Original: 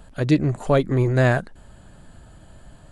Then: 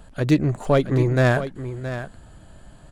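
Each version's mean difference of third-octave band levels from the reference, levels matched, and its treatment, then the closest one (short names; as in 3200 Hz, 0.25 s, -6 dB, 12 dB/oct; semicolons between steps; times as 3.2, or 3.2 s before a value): 3.0 dB: tracing distortion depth 0.06 ms; on a send: echo 0.671 s -11.5 dB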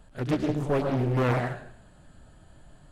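4.5 dB: pre-echo 34 ms -13.5 dB; plate-style reverb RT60 0.62 s, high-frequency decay 1×, pre-delay 95 ms, DRR 3.5 dB; Doppler distortion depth 0.9 ms; gain -8 dB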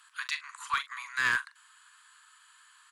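15.5 dB: steep high-pass 1000 Hz 96 dB/oct; doubler 42 ms -12 dB; one-sided clip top -21.5 dBFS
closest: first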